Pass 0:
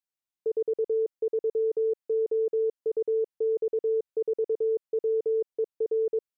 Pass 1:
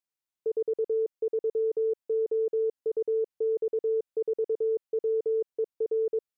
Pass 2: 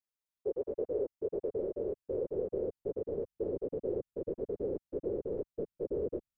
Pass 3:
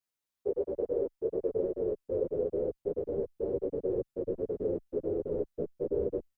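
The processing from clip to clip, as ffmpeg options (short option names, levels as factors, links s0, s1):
-af "acontrast=26,volume=0.501"
-af "afftfilt=real='hypot(re,im)*cos(2*PI*random(0))':imag='hypot(re,im)*sin(2*PI*random(1))':win_size=512:overlap=0.75,asubboost=boost=8:cutoff=160,volume=1.12"
-filter_complex "[0:a]asplit=2[s0][s1];[s1]adelay=9.7,afreqshift=-0.37[s2];[s0][s2]amix=inputs=2:normalize=1,volume=2.11"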